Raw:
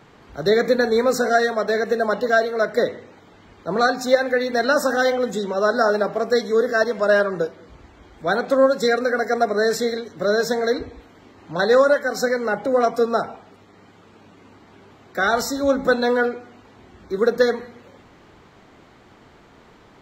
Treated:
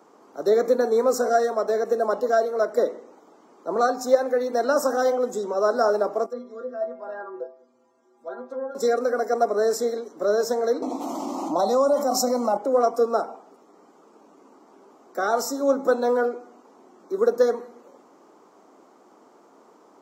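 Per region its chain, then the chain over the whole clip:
0:06.26–0:08.75: stiff-string resonator 120 Hz, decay 0.32 s, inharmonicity 0.008 + treble cut that deepens with the level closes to 2,200 Hz, closed at −28 dBFS
0:10.82–0:12.57: phaser with its sweep stopped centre 440 Hz, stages 6 + envelope flattener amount 70%
whole clip: high-pass filter 260 Hz 24 dB per octave; flat-topped bell 2,600 Hz −13.5 dB; level −1.5 dB

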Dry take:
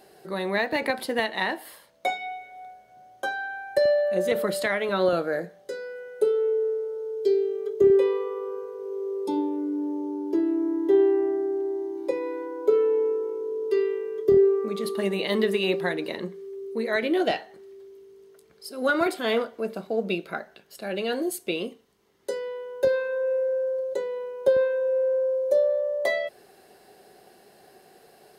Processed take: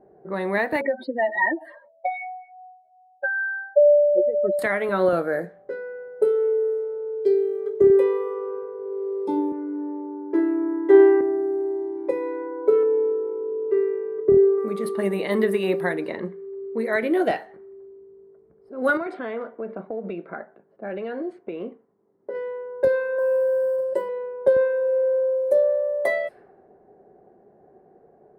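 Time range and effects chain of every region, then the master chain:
0:00.81–0:04.59: expanding power law on the bin magnitudes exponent 3.1 + low-pass filter 5,700 Hz + comb filter 3.2 ms, depth 75%
0:09.52–0:11.21: linear-phase brick-wall high-pass 180 Hz + parametric band 1,700 Hz +9.5 dB 1.8 octaves + multiband upward and downward expander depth 70%
0:12.83–0:14.58: low-pass filter 1,600 Hz + dynamic equaliser 1,000 Hz, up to −3 dB, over −37 dBFS, Q 1.4
0:18.97–0:22.35: high-pass filter 160 Hz + downward compressor, threshold −28 dBFS + high-frequency loss of the air 130 metres
0:23.18–0:24.09: one scale factor per block 7 bits + EQ curve with evenly spaced ripples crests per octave 1.3, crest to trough 15 dB
whole clip: flat-topped bell 4,400 Hz −11 dB; low-pass that shuts in the quiet parts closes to 560 Hz, open at −23.5 dBFS; level +2.5 dB

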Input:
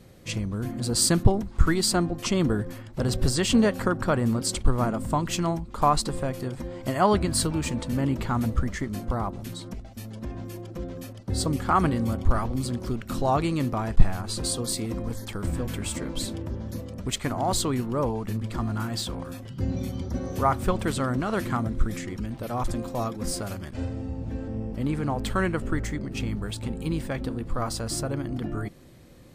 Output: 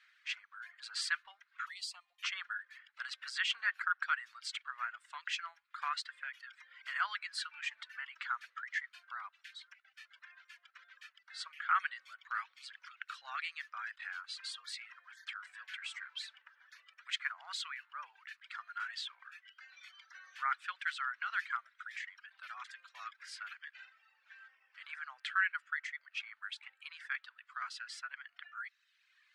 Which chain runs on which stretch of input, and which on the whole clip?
0:01.66–0:02.23: high-shelf EQ 8,400 Hz +10.5 dB + downward compressor 2.5 to 1, threshold −24 dBFS + phaser with its sweep stopped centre 410 Hz, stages 6
whole clip: low-pass filter 2,100 Hz 12 dB per octave; reverb reduction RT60 1.1 s; elliptic high-pass filter 1,500 Hz, stop band 80 dB; level +4 dB

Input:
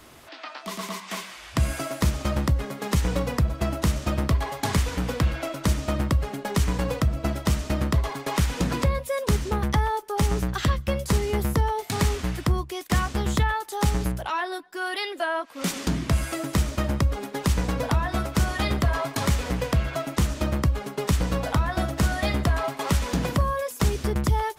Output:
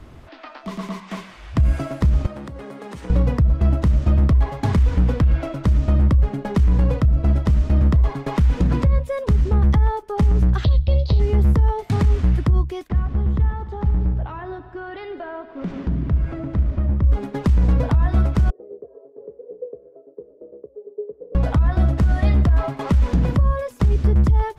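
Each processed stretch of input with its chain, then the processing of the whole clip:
0:02.26–0:03.10: high-pass filter 310 Hz + parametric band 8,900 Hz +7 dB 0.21 octaves + downward compressor 4 to 1, threshold −34 dBFS
0:10.64–0:11.20: running median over 3 samples + drawn EQ curve 110 Hz 0 dB, 210 Hz −10 dB, 640 Hz +3 dB, 1,600 Hz −15 dB, 2,800 Hz +2 dB, 4,200 Hz +15 dB, 8,400 Hz −26 dB, 13,000 Hz −15 dB
0:12.89–0:17.04: head-to-tape spacing loss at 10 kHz 27 dB + downward compressor 3 to 1, threshold −31 dBFS + echo machine with several playback heads 74 ms, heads first and second, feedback 73%, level −18 dB
0:18.50–0:21.35: flat-topped band-pass 450 Hz, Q 4.5 + amplitude tremolo 8.8 Hz, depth 37%
whole clip: RIAA equalisation playback; brickwall limiter −9.5 dBFS

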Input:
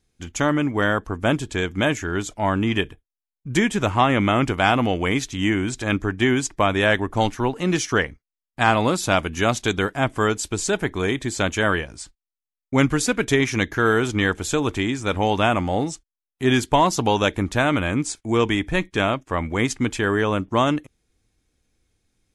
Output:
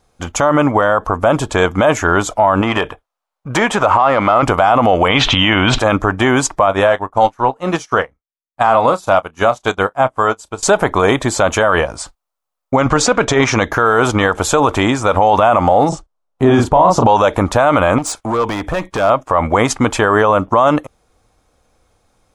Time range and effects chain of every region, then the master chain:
0:02.61–0:04.43: downward compressor 4 to 1, threshold −20 dBFS + mid-hump overdrive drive 9 dB, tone 3,200 Hz, clips at −12 dBFS
0:05.08–0:05.79: low-pass with resonance 3,100 Hz, resonance Q 3.4 + parametric band 370 Hz −4.5 dB 0.74 octaves + envelope flattener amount 70%
0:06.66–0:10.63: double-tracking delay 31 ms −12 dB + expander for the loud parts 2.5 to 1, over −33 dBFS
0:12.76–0:13.63: low-pass filter 7,400 Hz 24 dB per octave + compressor whose output falls as the input rises −19 dBFS, ratio −0.5
0:15.89–0:17.07: low-pass filter 8,700 Hz + tilt shelving filter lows +6.5 dB, about 810 Hz + double-tracking delay 34 ms −4.5 dB
0:17.98–0:19.10: downward compressor 16 to 1, threshold −23 dBFS + gain into a clipping stage and back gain 26.5 dB
whole clip: flat-topped bell 820 Hz +13 dB; boost into a limiter +10 dB; level −1 dB

